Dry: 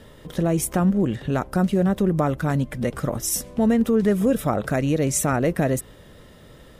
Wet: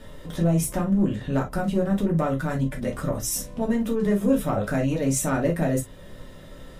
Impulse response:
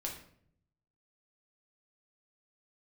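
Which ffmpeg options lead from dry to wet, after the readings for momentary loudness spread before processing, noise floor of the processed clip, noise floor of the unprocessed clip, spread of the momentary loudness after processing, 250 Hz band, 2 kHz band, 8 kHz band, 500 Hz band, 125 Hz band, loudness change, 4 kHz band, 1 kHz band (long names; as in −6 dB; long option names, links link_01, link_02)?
6 LU, −44 dBFS, −48 dBFS, 5 LU, −2.0 dB, −2.5 dB, −2.5 dB, −3.0 dB, −2.0 dB, −2.5 dB, −3.0 dB, −3.5 dB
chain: -filter_complex "[0:a]asplit=2[link_01][link_02];[link_02]acompressor=threshold=-36dB:ratio=6,volume=-3dB[link_03];[link_01][link_03]amix=inputs=2:normalize=0,asoftclip=type=tanh:threshold=-11dB[link_04];[1:a]atrim=start_sample=2205,afade=type=out:start_time=0.16:duration=0.01,atrim=end_sample=7497,asetrate=74970,aresample=44100[link_05];[link_04][link_05]afir=irnorm=-1:irlink=0,volume=1.5dB"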